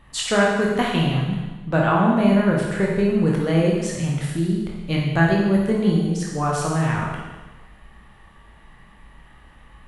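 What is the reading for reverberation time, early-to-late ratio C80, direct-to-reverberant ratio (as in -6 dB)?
1.2 s, 3.5 dB, -3.0 dB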